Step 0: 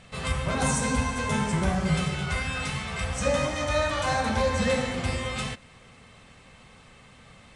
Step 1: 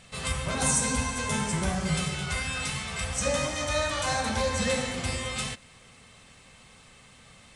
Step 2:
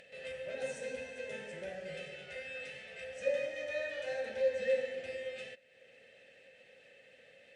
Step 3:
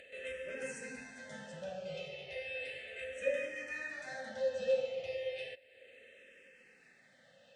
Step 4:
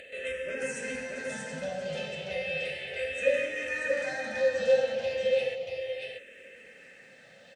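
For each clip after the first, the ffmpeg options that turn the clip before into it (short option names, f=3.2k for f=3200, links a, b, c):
-af "highshelf=f=4k:g=11,volume=-3.5dB"
-filter_complex "[0:a]asplit=3[a][b][c];[a]bandpass=f=530:t=q:w=8,volume=0dB[d];[b]bandpass=f=1.84k:t=q:w=8,volume=-6dB[e];[c]bandpass=f=2.48k:t=q:w=8,volume=-9dB[f];[d][e][f]amix=inputs=3:normalize=0,acompressor=mode=upward:threshold=-51dB:ratio=2.5"
-filter_complex "[0:a]asplit=2[a][b];[b]afreqshift=-0.34[c];[a][c]amix=inputs=2:normalize=1,volume=3dB"
-af "aecho=1:1:633:0.631,volume=8dB"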